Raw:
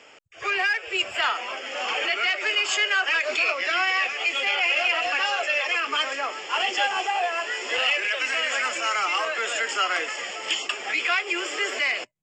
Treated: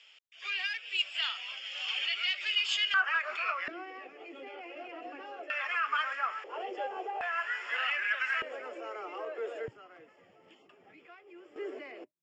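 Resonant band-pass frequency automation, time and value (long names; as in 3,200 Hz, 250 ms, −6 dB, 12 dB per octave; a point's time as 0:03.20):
resonant band-pass, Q 3
3,500 Hz
from 0:02.94 1,300 Hz
from 0:03.68 300 Hz
from 0:05.50 1,400 Hz
from 0:06.44 460 Hz
from 0:07.21 1,500 Hz
from 0:08.42 420 Hz
from 0:09.68 120 Hz
from 0:11.56 330 Hz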